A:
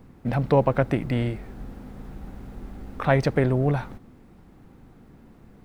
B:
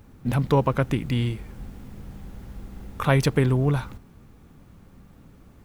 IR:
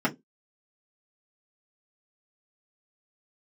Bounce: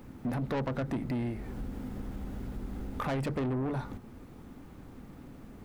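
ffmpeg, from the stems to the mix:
-filter_complex "[0:a]volume=-1dB,asplit=2[a][b];[1:a]volume=-2dB,asplit=2[c][d];[d]volume=-18.5dB[e];[b]apad=whole_len=249162[f];[c][f]sidechaincompress=threshold=-27dB:ratio=8:attack=16:release=599[g];[2:a]atrim=start_sample=2205[h];[e][h]afir=irnorm=-1:irlink=0[i];[a][g][i]amix=inputs=3:normalize=0,asoftclip=type=tanh:threshold=-21dB,acompressor=threshold=-36dB:ratio=2"

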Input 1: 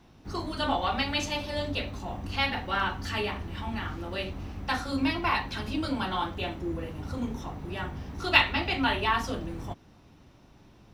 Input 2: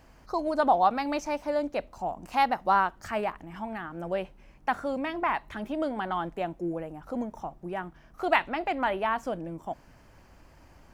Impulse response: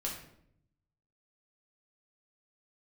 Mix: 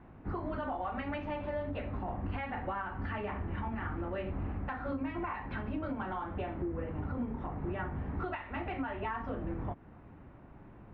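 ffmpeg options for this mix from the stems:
-filter_complex "[0:a]acompressor=threshold=-32dB:ratio=6,volume=2.5dB[a];[1:a]volume=-12dB[b];[a][b]amix=inputs=2:normalize=0,lowpass=f=2k:w=0.5412,lowpass=f=2k:w=1.3066,alimiter=level_in=3.5dB:limit=-24dB:level=0:latency=1:release=212,volume=-3.5dB"

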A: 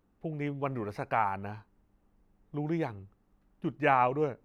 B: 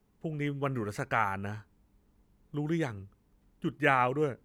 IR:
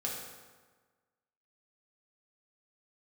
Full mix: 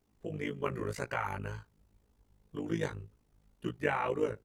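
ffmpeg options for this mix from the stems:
-filter_complex "[0:a]equalizer=f=1.9k:w=0.99:g=-12.5,volume=-4.5dB[a];[1:a]equalizer=f=6.3k:w=0.42:g=4.5,alimiter=limit=-17.5dB:level=0:latency=1:release=65,tremolo=f=53:d=0.857,adelay=1.8,volume=3dB[b];[a][b]amix=inputs=2:normalize=0,flanger=delay=16.5:depth=4.5:speed=1.9"

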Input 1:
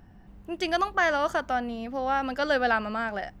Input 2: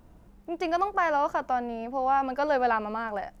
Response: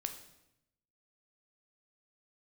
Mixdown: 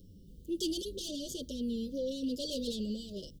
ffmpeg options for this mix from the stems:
-filter_complex "[0:a]equalizer=f=2.2k:t=o:w=0.22:g=-7.5,asplit=2[a][b];[b]adelay=7.3,afreqshift=-1[c];[a][c]amix=inputs=2:normalize=1,volume=0.5dB[d];[1:a]lowpass=1k,volume=-9.5dB[e];[d][e]amix=inputs=2:normalize=0,highshelf=f=2.4k:g=9.5,asoftclip=type=tanh:threshold=-27dB,asuperstop=centerf=1300:order=20:qfactor=0.51"

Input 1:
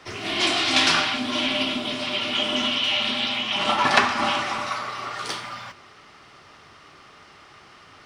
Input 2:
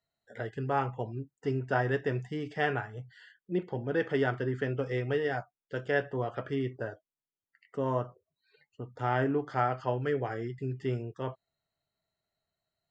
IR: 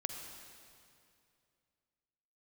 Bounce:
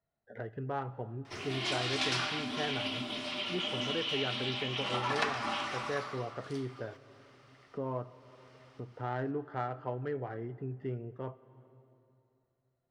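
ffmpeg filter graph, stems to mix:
-filter_complex "[0:a]adelay=1250,volume=-5dB,afade=t=out:st=6.02:d=0.32:silence=0.281838,asplit=2[a][b];[b]volume=-10.5dB[c];[1:a]highshelf=f=4.2k:g=-8.5,adynamicsmooth=sensitivity=2:basefreq=2.2k,volume=1dB,asplit=2[d][e];[e]volume=-13dB[f];[2:a]atrim=start_sample=2205[g];[c][f]amix=inputs=2:normalize=0[h];[h][g]afir=irnorm=-1:irlink=0[i];[a][d][i]amix=inputs=3:normalize=0,acompressor=threshold=-48dB:ratio=1.5"

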